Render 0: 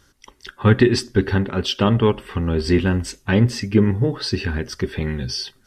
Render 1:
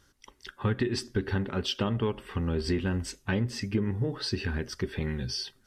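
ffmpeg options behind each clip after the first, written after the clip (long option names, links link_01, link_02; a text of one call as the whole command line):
ffmpeg -i in.wav -af "acompressor=threshold=-17dB:ratio=6,volume=-7dB" out.wav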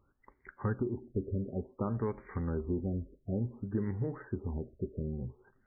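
ffmpeg -i in.wav -af "afftfilt=real='re*lt(b*sr/1024,640*pow(2400/640,0.5+0.5*sin(2*PI*0.56*pts/sr)))':imag='im*lt(b*sr/1024,640*pow(2400/640,0.5+0.5*sin(2*PI*0.56*pts/sr)))':win_size=1024:overlap=0.75,volume=-5dB" out.wav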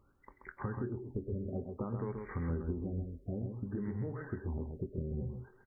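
ffmpeg -i in.wav -filter_complex "[0:a]acompressor=threshold=-37dB:ratio=6,asplit=2[link_01][link_02];[link_02]adelay=24,volume=-11.5dB[link_03];[link_01][link_03]amix=inputs=2:normalize=0,asplit=2[link_04][link_05];[link_05]aecho=0:1:131:0.531[link_06];[link_04][link_06]amix=inputs=2:normalize=0,volume=2dB" out.wav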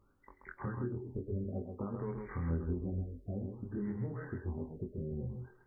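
ffmpeg -i in.wav -af "flanger=delay=19.5:depth=5.4:speed=0.62,volume=2dB" out.wav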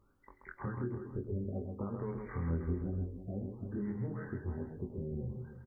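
ffmpeg -i in.wav -af "aecho=1:1:322:0.266" out.wav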